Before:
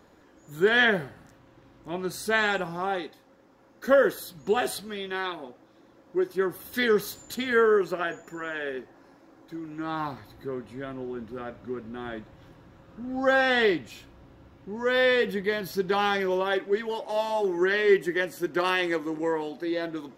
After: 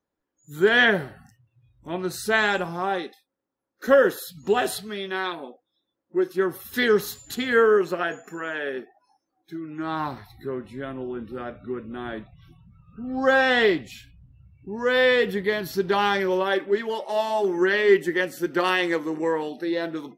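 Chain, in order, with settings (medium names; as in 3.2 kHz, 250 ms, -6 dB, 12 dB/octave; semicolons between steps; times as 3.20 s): spectral noise reduction 30 dB; trim +3 dB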